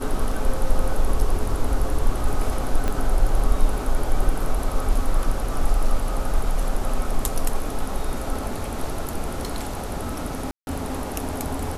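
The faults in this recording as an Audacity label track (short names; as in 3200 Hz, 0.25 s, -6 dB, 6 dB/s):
2.880000	2.880000	pop -12 dBFS
10.510000	10.670000	gap 0.161 s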